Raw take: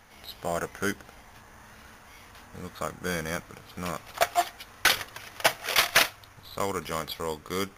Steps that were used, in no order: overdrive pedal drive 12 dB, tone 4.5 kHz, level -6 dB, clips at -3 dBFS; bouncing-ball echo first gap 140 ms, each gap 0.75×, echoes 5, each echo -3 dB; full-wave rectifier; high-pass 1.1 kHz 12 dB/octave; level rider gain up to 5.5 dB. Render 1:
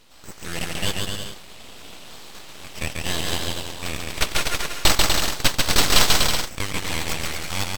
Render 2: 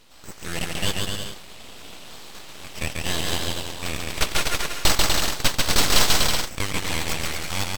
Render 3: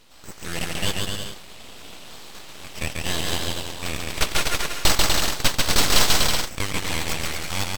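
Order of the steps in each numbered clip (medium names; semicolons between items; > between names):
bouncing-ball echo > overdrive pedal > level rider > high-pass > full-wave rectifier; high-pass > level rider > bouncing-ball echo > overdrive pedal > full-wave rectifier; bouncing-ball echo > level rider > high-pass > overdrive pedal > full-wave rectifier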